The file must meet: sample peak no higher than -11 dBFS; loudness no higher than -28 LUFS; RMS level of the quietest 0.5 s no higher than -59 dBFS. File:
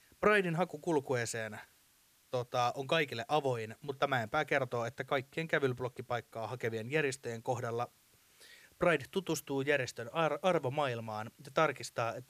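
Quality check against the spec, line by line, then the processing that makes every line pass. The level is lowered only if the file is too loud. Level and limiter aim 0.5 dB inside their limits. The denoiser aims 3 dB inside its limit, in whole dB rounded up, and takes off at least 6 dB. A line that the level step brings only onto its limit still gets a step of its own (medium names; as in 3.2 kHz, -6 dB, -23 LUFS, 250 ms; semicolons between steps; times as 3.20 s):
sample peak -13.0 dBFS: pass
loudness -34.5 LUFS: pass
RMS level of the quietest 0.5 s -68 dBFS: pass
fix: none needed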